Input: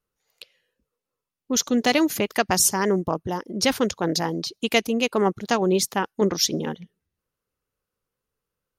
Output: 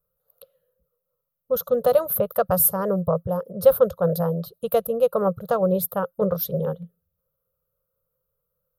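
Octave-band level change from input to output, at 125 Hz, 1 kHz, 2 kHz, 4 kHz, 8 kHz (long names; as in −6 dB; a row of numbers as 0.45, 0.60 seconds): +3.5 dB, −2.0 dB, −14.0 dB, below −15 dB, −8.0 dB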